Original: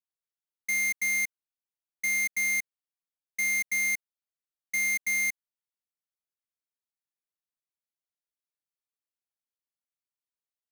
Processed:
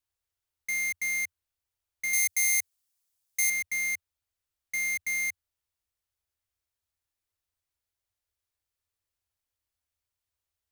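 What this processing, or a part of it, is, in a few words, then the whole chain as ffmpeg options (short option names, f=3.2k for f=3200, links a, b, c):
car stereo with a boomy subwoofer: -filter_complex "[0:a]lowshelf=f=120:t=q:w=3:g=11,alimiter=level_in=10.5dB:limit=-24dB:level=0:latency=1:release=30,volume=-10.5dB,asettb=1/sr,asplit=3[a][b][c];[a]atrim=end=2.134[d];[b]atrim=start=2.13:end=3.5,asetpts=PTS-STARTPTS,afade=t=in:d=0.004:c=qsin,afade=t=out:st=1.366:d=0.004:c=qsin,bass=f=250:g=-6,treble=f=4k:g=11[e];[c]atrim=start=3.496[f];[d][e]acrossfade=d=0.004:c1=hsin:c2=qsin[g];[g][f]acrossfade=d=0.004:c1=qsin:c2=hsin,volume=6dB"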